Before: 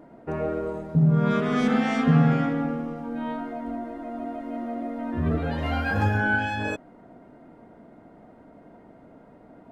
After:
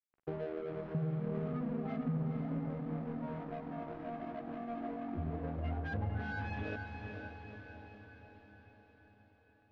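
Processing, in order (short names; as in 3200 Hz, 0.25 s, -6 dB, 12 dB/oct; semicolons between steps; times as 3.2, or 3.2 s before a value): HPF 94 Hz 6 dB/oct; notch 1400 Hz, Q 26; spectral gate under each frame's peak -10 dB strong; treble ducked by the level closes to 1100 Hz, closed at -20 dBFS; ten-band EQ 250 Hz -7 dB, 1000 Hz -11 dB, 2000 Hz -5 dB; compressor 6:1, threshold -37 dBFS, peak gain reduction 16 dB; crossover distortion -47.5 dBFS; air absorption 260 m; diffused feedback echo 0.478 s, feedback 59%, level -5 dB; gain +4 dB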